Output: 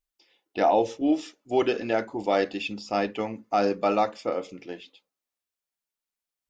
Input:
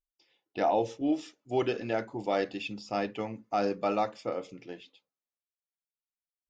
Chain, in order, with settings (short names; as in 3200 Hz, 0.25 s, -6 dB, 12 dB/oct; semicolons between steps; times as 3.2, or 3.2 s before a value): bell 130 Hz -10.5 dB 0.46 oct; gain +5.5 dB